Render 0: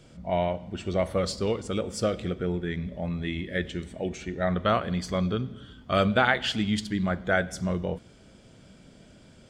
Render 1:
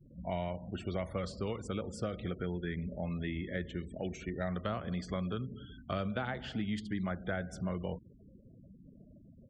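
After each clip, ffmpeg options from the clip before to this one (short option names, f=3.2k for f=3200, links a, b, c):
-filter_complex "[0:a]afftfilt=real='re*gte(hypot(re,im),0.00708)':imag='im*gte(hypot(re,im),0.00708)':win_size=1024:overlap=0.75,acrossover=split=220|910|1900[a][b][c][d];[a]acompressor=threshold=-35dB:ratio=4[e];[b]acompressor=threshold=-37dB:ratio=4[f];[c]acompressor=threshold=-43dB:ratio=4[g];[d]acompressor=threshold=-49dB:ratio=4[h];[e][f][g][h]amix=inputs=4:normalize=0,volume=-2.5dB"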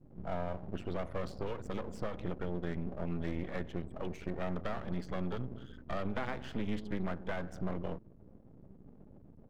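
-af "aeval=exprs='max(val(0),0)':c=same,highshelf=f=3.2k:g=-11,volume=4.5dB"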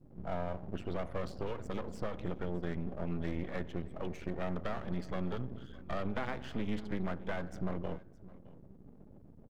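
-af "aecho=1:1:614:0.0944"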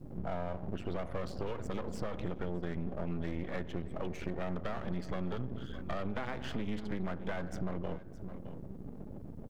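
-filter_complex "[0:a]asplit=2[a][b];[b]alimiter=level_in=6.5dB:limit=-24dB:level=0:latency=1:release=170,volume=-6.5dB,volume=1dB[c];[a][c]amix=inputs=2:normalize=0,acompressor=threshold=-43dB:ratio=2,volume=4.5dB"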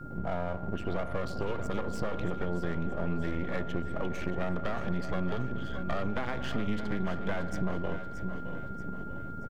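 -af "aeval=exprs='val(0)+0.00316*sin(2*PI*1400*n/s)':c=same,aecho=1:1:630|1260|1890|2520|3150:0.266|0.128|0.0613|0.0294|0.0141,volume=4dB"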